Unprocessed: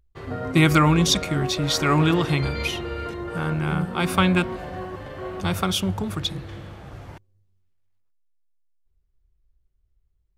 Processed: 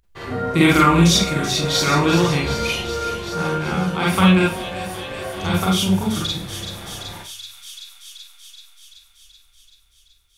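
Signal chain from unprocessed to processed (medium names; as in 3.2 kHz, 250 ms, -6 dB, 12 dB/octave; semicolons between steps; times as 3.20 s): on a send: feedback echo behind a high-pass 381 ms, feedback 68%, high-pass 3.7 kHz, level -8 dB; on the sum: Schroeder reverb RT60 0.33 s, combs from 32 ms, DRR -4.5 dB; tape noise reduction on one side only encoder only; trim -1.5 dB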